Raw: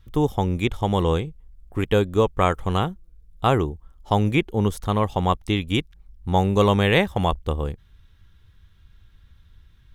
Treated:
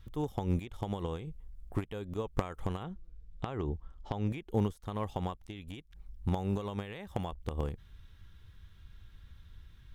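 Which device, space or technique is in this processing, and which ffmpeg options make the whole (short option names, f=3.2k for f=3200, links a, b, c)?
de-esser from a sidechain: -filter_complex "[0:a]asplit=2[a][b];[b]highpass=6k,apad=whole_len=438450[c];[a][c]sidechaincompress=threshold=-59dB:ratio=6:attack=1.4:release=92,asettb=1/sr,asplit=3[d][e][f];[d]atrim=end=2.834[g];[e]atrim=start=2.83:end=4.31,asetpts=PTS-STARTPTS,afade=t=in:d=0.004:c=qsin,afade=t=out:st=1.476:d=0.004:c=qsin,lowpass=5.1k[h];[f]atrim=start=4.306[i];[g][h]acrossfade=d=0.004:c1=hsin:c2=qsin[j];[j][i]acrossfade=d=0.004:c1=qsin:c2=hsin,volume=-1dB"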